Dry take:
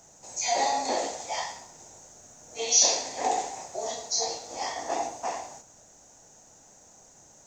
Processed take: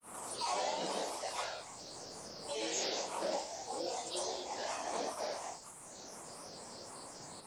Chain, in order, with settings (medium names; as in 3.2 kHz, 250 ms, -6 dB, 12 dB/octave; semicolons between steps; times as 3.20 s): granulator 252 ms, grains 25 per s, pitch spread up and down by 7 st; three bands compressed up and down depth 70%; trim -1 dB